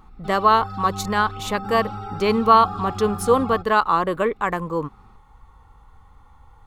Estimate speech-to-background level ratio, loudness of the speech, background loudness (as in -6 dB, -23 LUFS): 12.0 dB, -20.5 LUFS, -32.5 LUFS